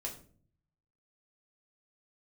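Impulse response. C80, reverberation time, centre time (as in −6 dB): 14.0 dB, 0.45 s, 18 ms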